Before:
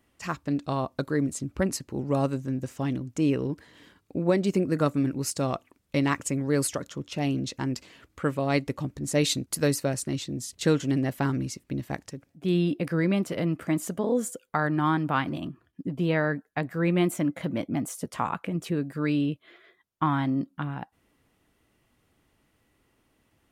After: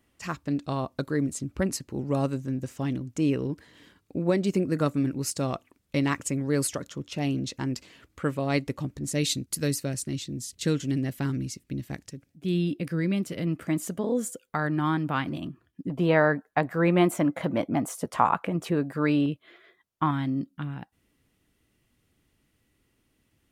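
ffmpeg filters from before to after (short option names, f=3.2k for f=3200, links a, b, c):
-af "asetnsamples=n=441:p=0,asendcmd='9.1 equalizer g -10;13.47 equalizer g -3.5;15.9 equalizer g 8;19.26 equalizer g 0;20.11 equalizer g -8.5',equalizer=f=850:t=o:w=1.9:g=-2.5"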